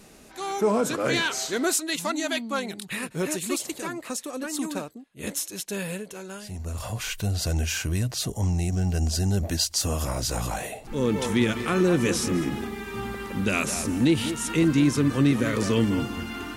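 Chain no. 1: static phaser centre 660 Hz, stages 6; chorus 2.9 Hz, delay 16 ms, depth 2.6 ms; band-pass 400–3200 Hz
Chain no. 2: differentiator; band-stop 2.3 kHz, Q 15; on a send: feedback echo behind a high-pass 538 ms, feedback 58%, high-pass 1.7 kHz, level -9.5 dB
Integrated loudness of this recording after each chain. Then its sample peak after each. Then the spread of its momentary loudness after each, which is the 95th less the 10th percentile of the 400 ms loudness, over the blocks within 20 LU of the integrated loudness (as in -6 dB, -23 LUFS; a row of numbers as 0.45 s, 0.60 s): -37.0 LUFS, -33.0 LUFS; -17.5 dBFS, -12.0 dBFS; 14 LU, 12 LU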